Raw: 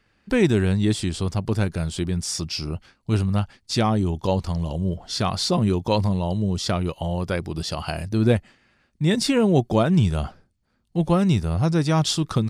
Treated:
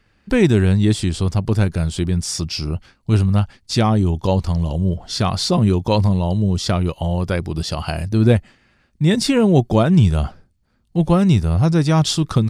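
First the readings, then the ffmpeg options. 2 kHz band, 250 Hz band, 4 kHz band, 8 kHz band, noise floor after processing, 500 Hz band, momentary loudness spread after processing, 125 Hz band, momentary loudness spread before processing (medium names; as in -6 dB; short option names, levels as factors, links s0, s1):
+3.0 dB, +4.5 dB, +3.0 dB, +3.0 dB, -61 dBFS, +3.5 dB, 8 LU, +6.0 dB, 8 LU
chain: -af "lowshelf=f=130:g=6,volume=1.41"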